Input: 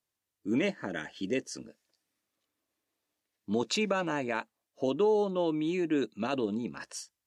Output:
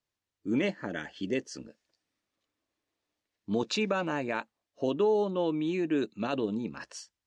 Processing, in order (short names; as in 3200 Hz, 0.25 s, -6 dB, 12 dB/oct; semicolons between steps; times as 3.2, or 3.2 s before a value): LPF 6300 Hz 12 dB/oct; low shelf 66 Hz +8 dB